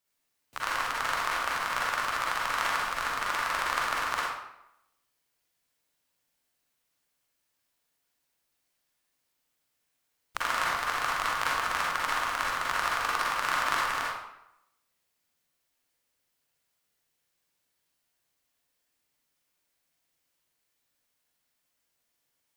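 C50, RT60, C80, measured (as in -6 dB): -3.0 dB, 0.85 s, 2.0 dB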